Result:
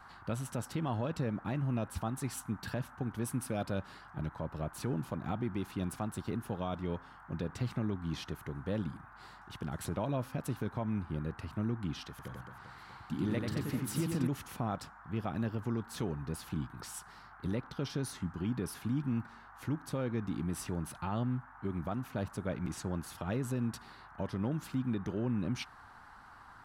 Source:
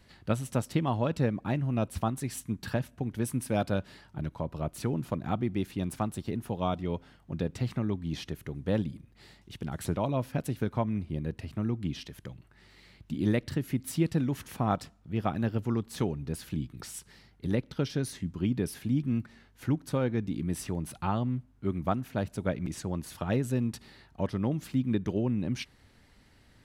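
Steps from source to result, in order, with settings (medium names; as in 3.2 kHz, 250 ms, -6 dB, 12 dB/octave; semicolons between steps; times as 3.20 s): peak limiter -22.5 dBFS, peak gain reduction 8 dB; band noise 750–1600 Hz -52 dBFS; 12.10–14.27 s: reverse bouncing-ball echo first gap 90 ms, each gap 1.4×, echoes 5; trim -3 dB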